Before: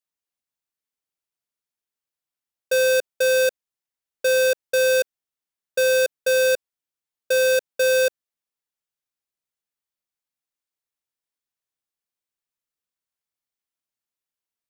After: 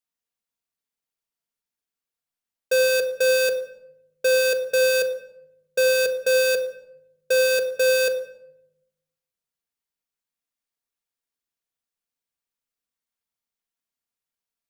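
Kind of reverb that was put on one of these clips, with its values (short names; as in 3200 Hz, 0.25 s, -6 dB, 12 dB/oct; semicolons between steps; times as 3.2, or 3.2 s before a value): shoebox room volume 2800 m³, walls furnished, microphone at 1.7 m; gain -1 dB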